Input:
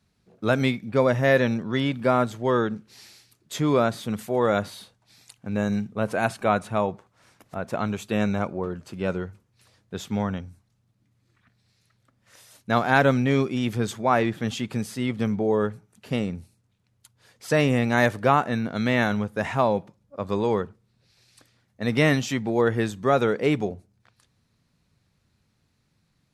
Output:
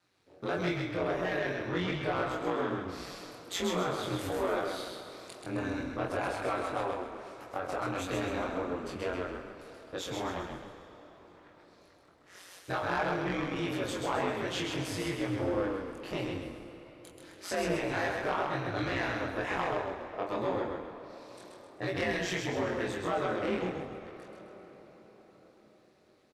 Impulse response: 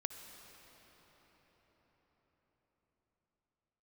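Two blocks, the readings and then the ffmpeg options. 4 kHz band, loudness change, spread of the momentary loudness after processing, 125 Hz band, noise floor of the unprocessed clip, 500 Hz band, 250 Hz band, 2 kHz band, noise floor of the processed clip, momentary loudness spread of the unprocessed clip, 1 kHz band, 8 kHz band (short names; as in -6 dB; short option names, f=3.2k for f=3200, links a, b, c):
-4.5 dB, -9.5 dB, 16 LU, -12.0 dB, -70 dBFS, -8.5 dB, -10.5 dB, -7.5 dB, -61 dBFS, 12 LU, -8.0 dB, -4.0 dB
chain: -filter_complex "[0:a]highpass=f=230:w=0.5412,highpass=f=230:w=1.3066,highshelf=f=4.9k:g=-8.5,acompressor=threshold=-31dB:ratio=3,flanger=delay=18.5:depth=5.6:speed=1.6,asoftclip=type=tanh:threshold=-30dB,aeval=exprs='val(0)*sin(2*PI*92*n/s)':c=same,asplit=2[a][b];[b]adelay=23,volume=-3.5dB[c];[a][c]amix=inputs=2:normalize=0,asplit=6[d][e][f][g][h][i];[e]adelay=131,afreqshift=-31,volume=-4dB[j];[f]adelay=262,afreqshift=-62,volume=-11.7dB[k];[g]adelay=393,afreqshift=-93,volume=-19.5dB[l];[h]adelay=524,afreqshift=-124,volume=-27.2dB[m];[i]adelay=655,afreqshift=-155,volume=-35dB[n];[d][j][k][l][m][n]amix=inputs=6:normalize=0,asplit=2[o][p];[1:a]atrim=start_sample=2205,lowshelf=f=370:g=-12[q];[p][q]afir=irnorm=-1:irlink=0,volume=5.5dB[r];[o][r]amix=inputs=2:normalize=0"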